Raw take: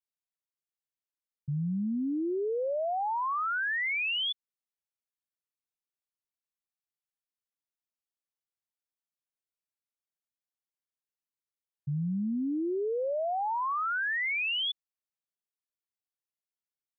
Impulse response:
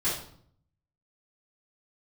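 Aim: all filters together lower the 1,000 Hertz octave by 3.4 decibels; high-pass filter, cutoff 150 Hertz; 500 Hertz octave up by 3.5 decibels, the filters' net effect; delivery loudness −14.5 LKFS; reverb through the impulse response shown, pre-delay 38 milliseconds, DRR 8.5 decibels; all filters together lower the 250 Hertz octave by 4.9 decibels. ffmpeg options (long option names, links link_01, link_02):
-filter_complex "[0:a]highpass=150,equalizer=frequency=250:width_type=o:gain=-8.5,equalizer=frequency=500:width_type=o:gain=8.5,equalizer=frequency=1000:width_type=o:gain=-7,asplit=2[link_01][link_02];[1:a]atrim=start_sample=2205,adelay=38[link_03];[link_02][link_03]afir=irnorm=-1:irlink=0,volume=-17.5dB[link_04];[link_01][link_04]amix=inputs=2:normalize=0,volume=16dB"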